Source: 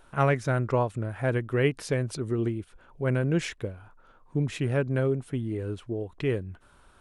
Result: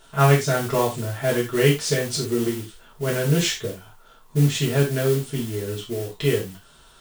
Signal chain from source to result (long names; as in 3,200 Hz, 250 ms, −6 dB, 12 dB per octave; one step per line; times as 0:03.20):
flat-topped bell 5,000 Hz +10.5 dB
noise that follows the level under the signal 15 dB
convolution reverb, pre-delay 3 ms, DRR −5 dB
level −1 dB